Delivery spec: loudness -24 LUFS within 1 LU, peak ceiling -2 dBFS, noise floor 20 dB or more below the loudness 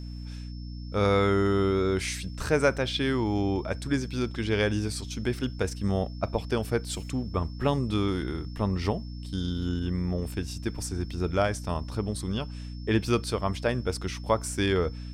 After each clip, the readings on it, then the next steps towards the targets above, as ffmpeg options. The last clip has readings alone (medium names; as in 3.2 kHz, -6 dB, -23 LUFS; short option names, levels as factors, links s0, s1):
hum 60 Hz; highest harmonic 300 Hz; hum level -35 dBFS; steady tone 5.3 kHz; tone level -52 dBFS; loudness -28.5 LUFS; peak level -9.5 dBFS; loudness target -24.0 LUFS
-> -af "bandreject=f=60:t=h:w=6,bandreject=f=120:t=h:w=6,bandreject=f=180:t=h:w=6,bandreject=f=240:t=h:w=6,bandreject=f=300:t=h:w=6"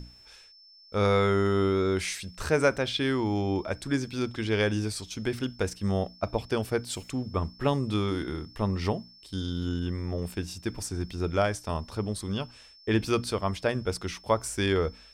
hum not found; steady tone 5.3 kHz; tone level -52 dBFS
-> -af "bandreject=f=5300:w=30"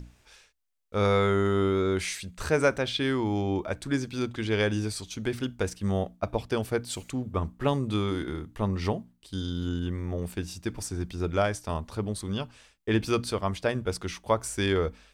steady tone not found; loudness -29.5 LUFS; peak level -10.0 dBFS; loudness target -24.0 LUFS
-> -af "volume=1.88"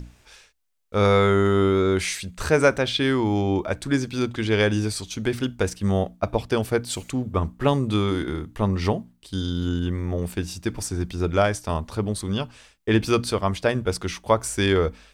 loudness -24.0 LUFS; peak level -5.0 dBFS; noise floor -58 dBFS